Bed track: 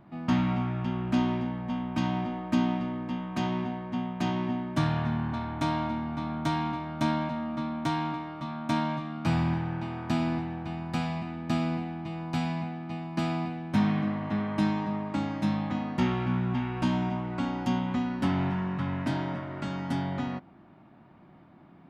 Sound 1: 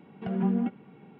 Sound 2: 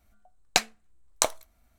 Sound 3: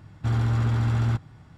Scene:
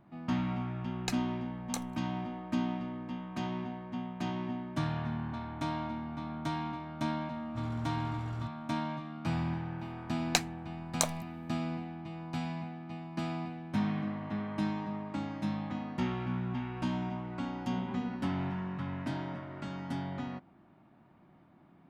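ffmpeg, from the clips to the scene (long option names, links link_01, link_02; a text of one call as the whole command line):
ffmpeg -i bed.wav -i cue0.wav -i cue1.wav -i cue2.wav -filter_complex "[2:a]asplit=2[link_01][link_02];[0:a]volume=-6.5dB[link_03];[link_01]aecho=1:1:2.4:0.76,atrim=end=1.78,asetpts=PTS-STARTPTS,volume=-16.5dB,afade=type=in:duration=0.004:curve=hsin,afade=type=out:start_time=1.776:duration=0.004:curve=hsin,adelay=520[link_04];[3:a]atrim=end=1.57,asetpts=PTS-STARTPTS,volume=-15dB,afade=type=in:duration=0.004:curve=hsin,afade=type=out:start_time=1.566:duration=0.004:curve=hsin,adelay=7310[link_05];[link_02]atrim=end=1.78,asetpts=PTS-STARTPTS,volume=-5.5dB,afade=type=in:duration=0.004:curve=hsin,afade=type=out:start_time=1.776:duration=0.004:curve=hsin,adelay=9790[link_06];[1:a]atrim=end=1.19,asetpts=PTS-STARTPTS,volume=-13.5dB,afade=type=in:duration=0.004:curve=hsin,afade=type=out:start_time=1.186:duration=0.004:curve=hsin,adelay=17470[link_07];[link_03][link_04][link_05][link_06][link_07]amix=inputs=5:normalize=0" out.wav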